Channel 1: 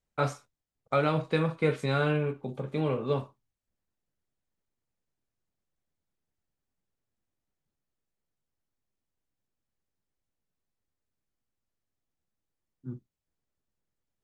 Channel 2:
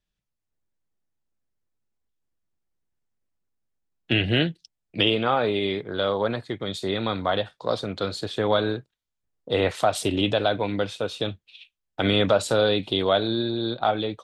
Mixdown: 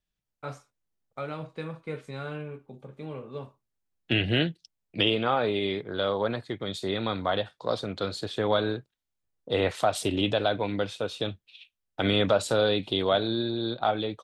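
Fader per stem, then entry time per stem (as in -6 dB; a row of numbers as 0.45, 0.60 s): -9.5, -3.0 dB; 0.25, 0.00 s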